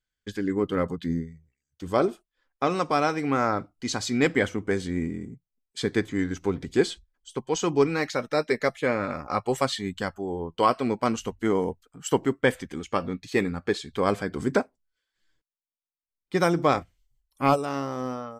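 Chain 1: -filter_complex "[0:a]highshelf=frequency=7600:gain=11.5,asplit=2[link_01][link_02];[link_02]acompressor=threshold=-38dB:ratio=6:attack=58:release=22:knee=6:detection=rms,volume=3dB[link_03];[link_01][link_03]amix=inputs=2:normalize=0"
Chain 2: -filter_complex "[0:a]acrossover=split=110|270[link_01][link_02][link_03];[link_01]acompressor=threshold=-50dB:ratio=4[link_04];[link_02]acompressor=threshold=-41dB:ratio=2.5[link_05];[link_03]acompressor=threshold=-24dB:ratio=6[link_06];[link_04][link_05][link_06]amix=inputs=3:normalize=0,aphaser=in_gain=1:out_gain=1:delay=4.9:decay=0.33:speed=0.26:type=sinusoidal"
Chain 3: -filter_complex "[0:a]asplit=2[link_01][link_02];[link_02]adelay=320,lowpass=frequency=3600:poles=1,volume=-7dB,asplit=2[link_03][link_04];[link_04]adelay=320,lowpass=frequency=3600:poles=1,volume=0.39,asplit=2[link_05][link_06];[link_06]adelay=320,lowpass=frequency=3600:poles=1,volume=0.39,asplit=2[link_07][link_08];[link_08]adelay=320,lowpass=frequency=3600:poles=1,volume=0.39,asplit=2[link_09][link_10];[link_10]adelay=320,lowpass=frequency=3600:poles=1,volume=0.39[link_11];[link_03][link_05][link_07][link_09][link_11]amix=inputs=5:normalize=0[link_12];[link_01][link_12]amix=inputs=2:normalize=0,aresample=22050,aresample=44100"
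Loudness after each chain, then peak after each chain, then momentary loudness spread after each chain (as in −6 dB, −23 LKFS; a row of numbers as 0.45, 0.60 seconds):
−23.5, −30.0, −26.5 LKFS; −5.5, −11.0, −7.5 dBFS; 8, 8, 9 LU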